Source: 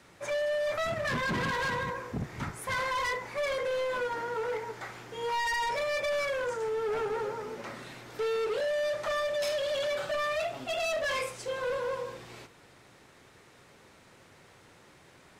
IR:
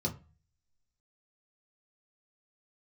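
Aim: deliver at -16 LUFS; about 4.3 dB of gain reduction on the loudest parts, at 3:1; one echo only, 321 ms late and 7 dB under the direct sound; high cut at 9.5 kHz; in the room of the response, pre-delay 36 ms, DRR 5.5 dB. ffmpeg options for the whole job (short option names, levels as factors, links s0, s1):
-filter_complex "[0:a]lowpass=9500,acompressor=threshold=0.0178:ratio=3,aecho=1:1:321:0.447,asplit=2[s0][s1];[1:a]atrim=start_sample=2205,adelay=36[s2];[s1][s2]afir=irnorm=-1:irlink=0,volume=0.335[s3];[s0][s3]amix=inputs=2:normalize=0,volume=7.5"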